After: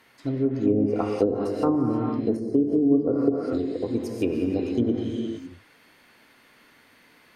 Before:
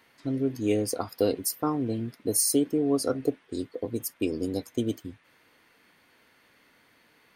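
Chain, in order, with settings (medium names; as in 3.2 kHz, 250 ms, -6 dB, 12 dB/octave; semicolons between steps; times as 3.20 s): gated-style reverb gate 490 ms flat, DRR 1 dB; low-pass that closes with the level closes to 390 Hz, closed at -18 dBFS; trim +3 dB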